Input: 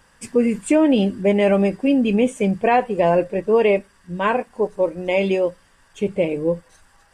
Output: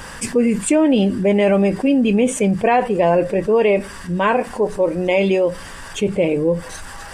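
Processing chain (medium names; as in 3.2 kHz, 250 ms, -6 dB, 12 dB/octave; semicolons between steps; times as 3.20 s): level flattener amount 50%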